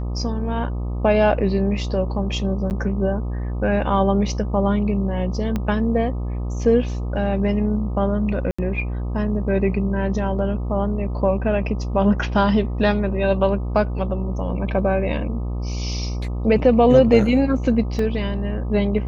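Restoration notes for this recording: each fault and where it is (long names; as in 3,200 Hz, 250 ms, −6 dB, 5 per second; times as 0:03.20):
mains buzz 60 Hz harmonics 21 −25 dBFS
0:02.70–0:02.71: drop-out 9.1 ms
0:05.56: click −12 dBFS
0:08.51–0:08.59: drop-out 75 ms
0:17.99: drop-out 2.2 ms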